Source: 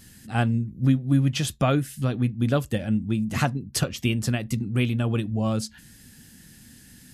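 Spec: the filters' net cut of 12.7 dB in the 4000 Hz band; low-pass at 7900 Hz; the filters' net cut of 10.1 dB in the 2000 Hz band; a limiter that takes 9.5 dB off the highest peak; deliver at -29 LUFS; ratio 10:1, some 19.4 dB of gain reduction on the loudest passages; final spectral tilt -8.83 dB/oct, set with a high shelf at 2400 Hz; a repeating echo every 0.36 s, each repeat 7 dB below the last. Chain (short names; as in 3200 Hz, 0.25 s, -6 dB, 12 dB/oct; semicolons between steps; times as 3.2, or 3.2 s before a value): LPF 7900 Hz; bell 2000 Hz -9 dB; high shelf 2400 Hz -5 dB; bell 4000 Hz -9 dB; compressor 10:1, threshold -36 dBFS; limiter -34.5 dBFS; feedback echo 0.36 s, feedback 45%, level -7 dB; gain +14 dB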